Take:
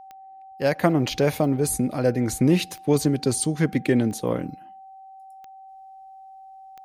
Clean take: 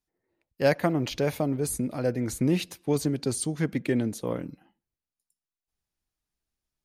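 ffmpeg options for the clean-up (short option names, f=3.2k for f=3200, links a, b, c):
-af "adeclick=t=4,bandreject=f=770:w=30,asetnsamples=n=441:p=0,asendcmd='0.79 volume volume -5.5dB',volume=0dB"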